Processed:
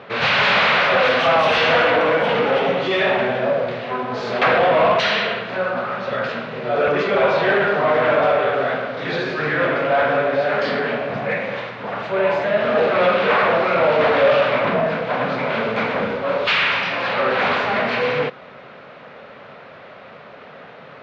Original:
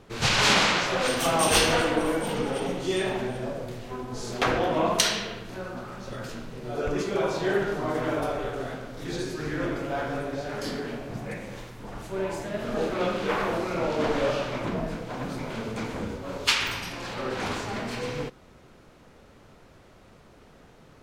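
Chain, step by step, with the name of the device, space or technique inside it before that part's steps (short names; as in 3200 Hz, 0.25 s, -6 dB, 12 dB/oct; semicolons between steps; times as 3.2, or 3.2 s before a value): overdrive pedal into a guitar cabinet (overdrive pedal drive 27 dB, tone 4700 Hz, clips at -4.5 dBFS; speaker cabinet 100–3500 Hz, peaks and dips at 150 Hz +3 dB, 330 Hz -10 dB, 580 Hz +4 dB, 900 Hz -3 dB, 3100 Hz -3 dB); gain -2 dB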